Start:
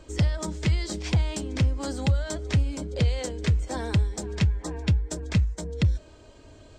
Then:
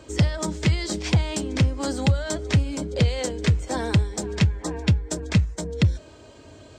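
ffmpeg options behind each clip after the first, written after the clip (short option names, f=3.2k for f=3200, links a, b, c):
-af "highpass=82,volume=5dB"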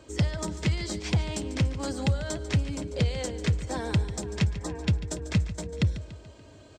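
-af "aecho=1:1:144|288|432|576|720:0.2|0.0998|0.0499|0.0249|0.0125,volume=-5.5dB"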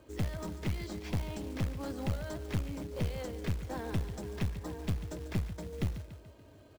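-af "aeval=exprs='clip(val(0),-1,0.0335)':c=same,aemphasis=mode=reproduction:type=75kf,acrusher=bits=4:mode=log:mix=0:aa=0.000001,volume=-5.5dB"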